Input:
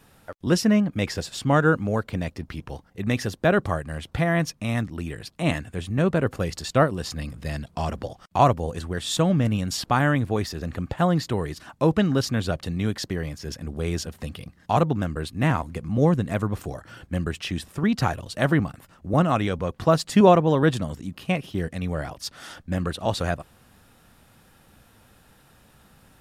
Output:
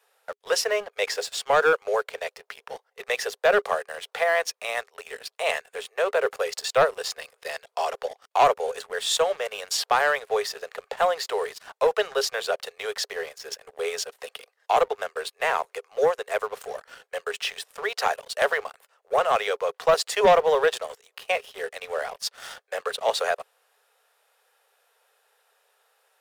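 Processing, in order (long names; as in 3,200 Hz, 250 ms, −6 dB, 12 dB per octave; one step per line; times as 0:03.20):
Chebyshev high-pass filter 410 Hz, order 8
leveller curve on the samples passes 2
level −3.5 dB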